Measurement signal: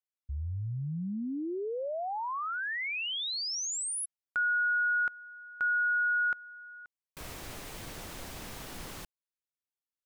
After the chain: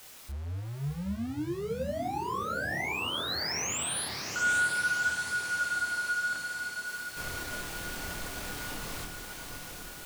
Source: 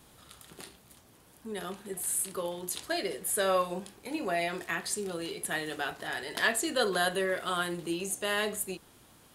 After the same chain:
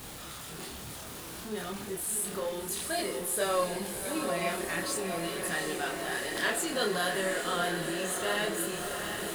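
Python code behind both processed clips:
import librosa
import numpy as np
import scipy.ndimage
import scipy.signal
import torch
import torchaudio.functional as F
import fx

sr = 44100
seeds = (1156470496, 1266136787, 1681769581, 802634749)

y = x + 0.5 * 10.0 ** (-35.5 / 20.0) * np.sign(x)
y = fx.echo_diffused(y, sr, ms=741, feedback_pct=70, wet_db=-6)
y = fx.chorus_voices(y, sr, voices=2, hz=0.55, base_ms=27, depth_ms=3.5, mix_pct=45)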